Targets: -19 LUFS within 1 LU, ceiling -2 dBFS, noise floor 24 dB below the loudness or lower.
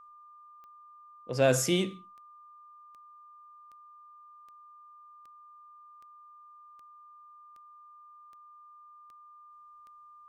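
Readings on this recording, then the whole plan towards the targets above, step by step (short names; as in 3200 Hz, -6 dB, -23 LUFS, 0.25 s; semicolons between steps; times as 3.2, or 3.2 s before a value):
clicks 13; steady tone 1200 Hz; tone level -51 dBFS; loudness -27.5 LUFS; peak -11.5 dBFS; loudness target -19.0 LUFS
-> de-click; notch 1200 Hz, Q 30; gain +8.5 dB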